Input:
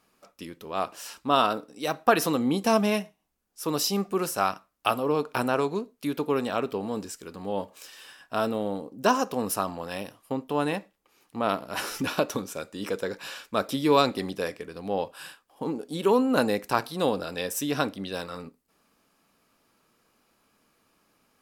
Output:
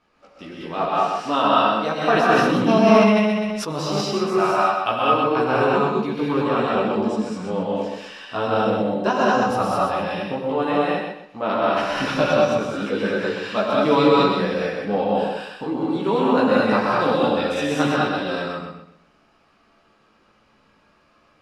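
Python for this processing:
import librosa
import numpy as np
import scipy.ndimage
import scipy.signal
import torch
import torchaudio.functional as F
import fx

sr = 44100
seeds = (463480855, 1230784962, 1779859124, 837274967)

p1 = scipy.signal.sosfilt(scipy.signal.butter(2, 3600.0, 'lowpass', fs=sr, output='sos'), x)
p2 = fx.rider(p1, sr, range_db=3, speed_s=0.5)
p3 = p1 + F.gain(torch.from_numpy(p2), -0.5).numpy()
p4 = fx.chorus_voices(p3, sr, voices=4, hz=0.46, base_ms=16, depth_ms=2.9, mix_pct=50)
p5 = p4 + fx.echo_feedback(p4, sr, ms=127, feedback_pct=30, wet_db=-5, dry=0)
p6 = fx.rev_gated(p5, sr, seeds[0], gate_ms=240, shape='rising', drr_db=-4.0)
p7 = fx.sustainer(p6, sr, db_per_s=26.0, at=(2.02, 4.01))
y = F.gain(torch.from_numpy(p7), -1.0).numpy()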